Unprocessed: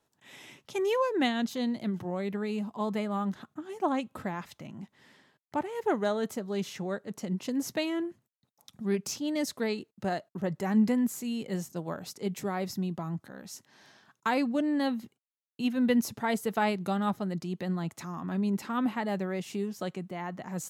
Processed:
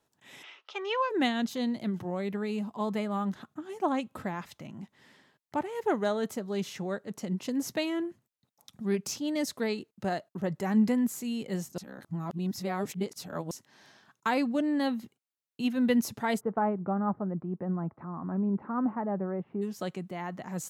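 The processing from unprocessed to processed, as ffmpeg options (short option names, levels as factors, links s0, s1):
-filter_complex "[0:a]asplit=3[s0][s1][s2];[s0]afade=t=out:st=0.42:d=0.02[s3];[s1]highpass=f=480:w=0.5412,highpass=f=480:w=1.3066,equalizer=f=550:t=q:w=4:g=-4,equalizer=f=1300:t=q:w=4:g=9,equalizer=f=2900:t=q:w=4:g=5,lowpass=f=4900:w=0.5412,lowpass=f=4900:w=1.3066,afade=t=in:st=0.42:d=0.02,afade=t=out:st=1.09:d=0.02[s4];[s2]afade=t=in:st=1.09:d=0.02[s5];[s3][s4][s5]amix=inputs=3:normalize=0,asplit=3[s6][s7][s8];[s6]afade=t=out:st=16.39:d=0.02[s9];[s7]lowpass=f=1300:w=0.5412,lowpass=f=1300:w=1.3066,afade=t=in:st=16.39:d=0.02,afade=t=out:st=19.61:d=0.02[s10];[s8]afade=t=in:st=19.61:d=0.02[s11];[s9][s10][s11]amix=inputs=3:normalize=0,asplit=3[s12][s13][s14];[s12]atrim=end=11.782[s15];[s13]atrim=start=11.778:end=13.512,asetpts=PTS-STARTPTS,areverse[s16];[s14]atrim=start=13.508[s17];[s15][s16]acrossfade=d=0.004:c1=hsin:c2=hsin[s18];[s18][s17]acrossfade=d=0.004:c1=hsin:c2=hsin"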